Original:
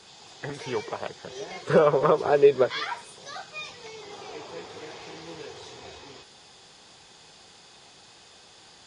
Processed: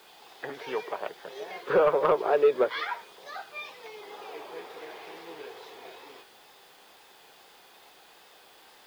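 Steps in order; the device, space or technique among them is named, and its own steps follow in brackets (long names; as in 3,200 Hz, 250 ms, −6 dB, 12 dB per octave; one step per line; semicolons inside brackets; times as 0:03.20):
tape answering machine (band-pass filter 360–3,000 Hz; soft clipping −13 dBFS, distortion −17 dB; tape wow and flutter; white noise bed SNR 31 dB)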